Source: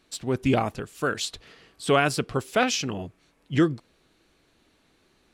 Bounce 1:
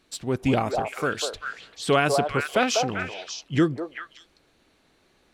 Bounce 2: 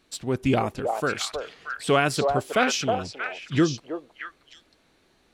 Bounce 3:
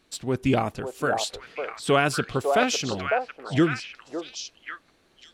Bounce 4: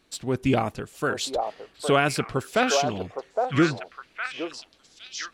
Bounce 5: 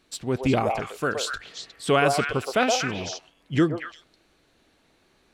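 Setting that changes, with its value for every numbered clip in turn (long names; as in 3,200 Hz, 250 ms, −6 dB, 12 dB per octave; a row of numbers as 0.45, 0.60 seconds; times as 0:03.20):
echo through a band-pass that steps, delay time: 196, 316, 552, 812, 120 milliseconds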